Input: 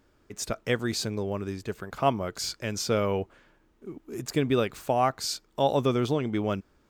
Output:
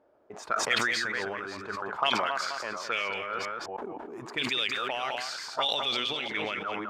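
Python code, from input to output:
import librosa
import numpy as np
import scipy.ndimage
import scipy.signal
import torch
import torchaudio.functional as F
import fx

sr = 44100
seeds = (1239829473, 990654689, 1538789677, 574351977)

p1 = fx.reverse_delay(x, sr, ms=314, wet_db=-8)
p2 = fx.highpass(p1, sr, hz=240.0, slope=6, at=(1.96, 3.09))
p3 = fx.auto_wah(p2, sr, base_hz=630.0, top_hz=3500.0, q=3.4, full_db=-20.0, direction='up')
p4 = 10.0 ** (-30.0 / 20.0) * np.tanh(p3 / 10.0 ** (-30.0 / 20.0))
p5 = p3 + (p4 * 10.0 ** (-4.5 / 20.0))
p6 = p5 + 10.0 ** (-9.5 / 20.0) * np.pad(p5, (int(205 * sr / 1000.0), 0))[:len(p5)]
p7 = fx.sustainer(p6, sr, db_per_s=21.0)
y = p7 * 10.0 ** (6.5 / 20.0)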